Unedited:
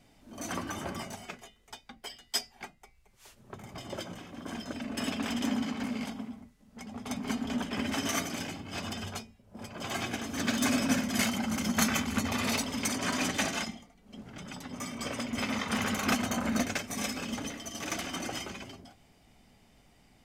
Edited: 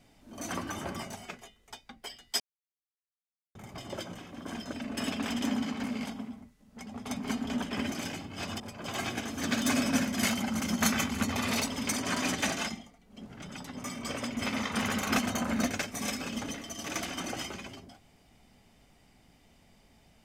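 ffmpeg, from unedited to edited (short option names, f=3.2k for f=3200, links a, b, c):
-filter_complex "[0:a]asplit=5[a][b][c][d][e];[a]atrim=end=2.4,asetpts=PTS-STARTPTS,afade=t=out:st=2.396:d=0.004:c=hsin[f];[b]atrim=start=2.4:end=3.55,asetpts=PTS-STARTPTS,volume=0[g];[c]atrim=start=3.55:end=7.922,asetpts=PTS-STARTPTS,afade=t=in:d=0.004:c=hsin[h];[d]atrim=start=8.268:end=8.952[i];[e]atrim=start=9.558[j];[f][g][h]concat=n=3:v=0:a=1[k];[k][i]acrossfade=d=0.004:c1=hsin:c2=hsin[l];[l][j]acrossfade=d=0.004:c1=hsin:c2=hsin"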